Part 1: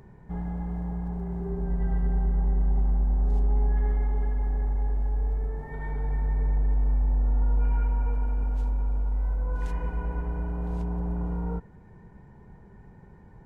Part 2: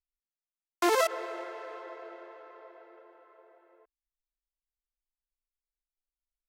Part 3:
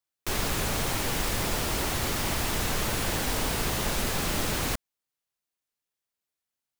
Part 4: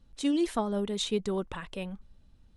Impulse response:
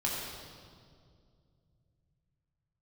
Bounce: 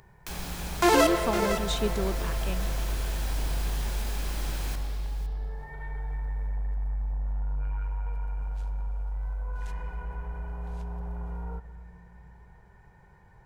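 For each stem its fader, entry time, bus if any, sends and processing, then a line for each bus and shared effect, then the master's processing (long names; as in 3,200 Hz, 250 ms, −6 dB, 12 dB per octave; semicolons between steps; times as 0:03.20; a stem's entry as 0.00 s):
−6.5 dB, 0.00 s, send −18 dB, no echo send, parametric band 250 Hz −11.5 dB 0.91 octaves; soft clipping −22 dBFS, distortion −17 dB
+2.5 dB, 0.00 s, send −11.5 dB, echo send −7 dB, no processing
−15.0 dB, 0.00 s, send −6 dB, echo send −17.5 dB, no processing
−0.5 dB, 0.70 s, no send, no echo send, no processing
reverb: on, RT60 2.2 s, pre-delay 4 ms
echo: single-tap delay 508 ms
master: one half of a high-frequency compander encoder only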